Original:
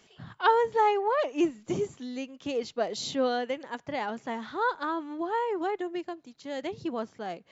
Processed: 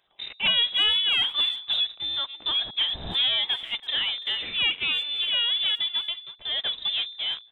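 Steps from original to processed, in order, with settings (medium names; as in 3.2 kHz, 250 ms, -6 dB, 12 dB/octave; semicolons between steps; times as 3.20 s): waveshaping leveller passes 3; de-hum 113 Hz, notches 4; in parallel at -5 dB: hard clipper -26 dBFS, distortion -6 dB; on the sum: frequency inversion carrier 3.8 kHz; speakerphone echo 330 ms, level -16 dB; trim -7 dB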